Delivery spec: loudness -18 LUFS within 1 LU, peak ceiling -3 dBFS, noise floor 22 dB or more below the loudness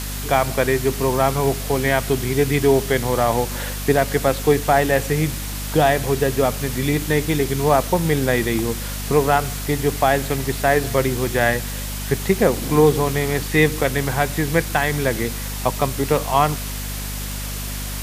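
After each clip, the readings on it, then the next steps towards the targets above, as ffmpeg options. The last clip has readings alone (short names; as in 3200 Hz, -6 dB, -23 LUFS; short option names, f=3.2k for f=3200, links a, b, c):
hum 50 Hz; harmonics up to 250 Hz; hum level -27 dBFS; noise floor -28 dBFS; noise floor target -42 dBFS; loudness -20.0 LUFS; peak -2.5 dBFS; loudness target -18.0 LUFS
-> -af "bandreject=f=50:t=h:w=6,bandreject=f=100:t=h:w=6,bandreject=f=150:t=h:w=6,bandreject=f=200:t=h:w=6,bandreject=f=250:t=h:w=6"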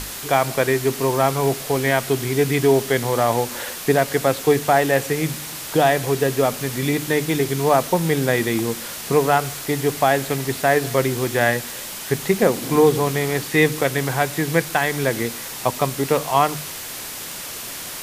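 hum none; noise floor -32 dBFS; noise floor target -43 dBFS
-> -af "afftdn=nr=11:nf=-32"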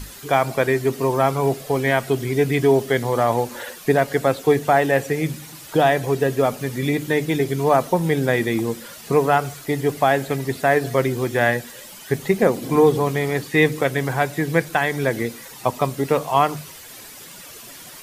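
noise floor -40 dBFS; noise floor target -43 dBFS
-> -af "afftdn=nr=6:nf=-40"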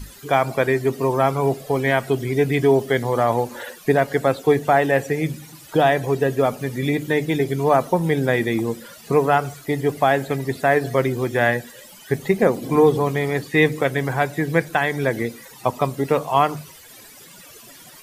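noise floor -44 dBFS; loudness -20.5 LUFS; peak -3.0 dBFS; loudness target -18.0 LUFS
-> -af "volume=2.5dB,alimiter=limit=-3dB:level=0:latency=1"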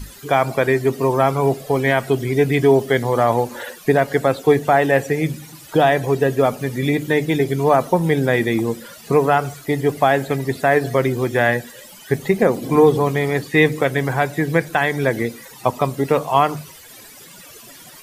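loudness -18.5 LUFS; peak -3.0 dBFS; noise floor -42 dBFS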